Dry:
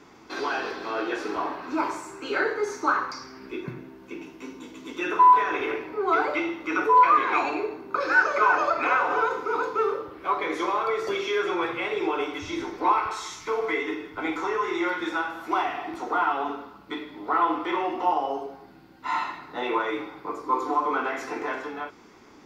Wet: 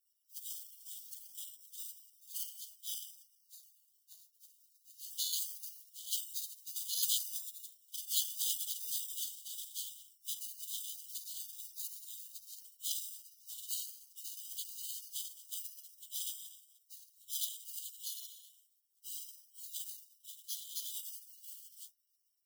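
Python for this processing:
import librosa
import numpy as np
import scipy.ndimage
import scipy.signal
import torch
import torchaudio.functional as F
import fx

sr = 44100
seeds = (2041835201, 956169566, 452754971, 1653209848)

y = np.repeat(scipy.signal.resample_poly(x, 1, 8), 8)[:len(x)]
y = fx.brickwall_highpass(y, sr, low_hz=2900.0)
y = fx.spec_gate(y, sr, threshold_db=-25, keep='weak')
y = y * librosa.db_to_amplitude(9.5)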